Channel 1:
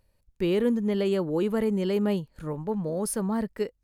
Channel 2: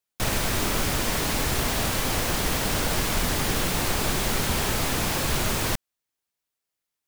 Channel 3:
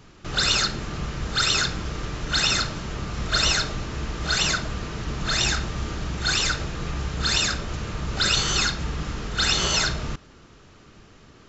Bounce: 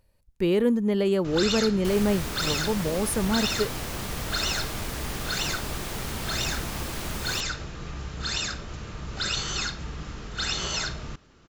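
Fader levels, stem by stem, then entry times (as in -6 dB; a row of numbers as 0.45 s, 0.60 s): +2.0 dB, -9.0 dB, -7.0 dB; 0.00 s, 1.65 s, 1.00 s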